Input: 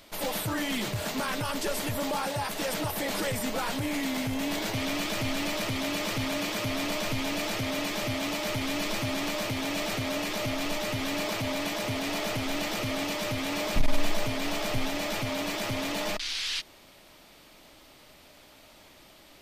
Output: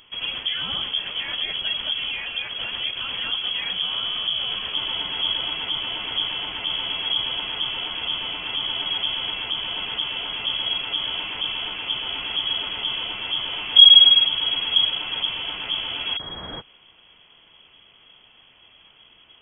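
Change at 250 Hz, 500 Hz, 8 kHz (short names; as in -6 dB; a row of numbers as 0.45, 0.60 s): -14.0 dB, -10.5 dB, under -40 dB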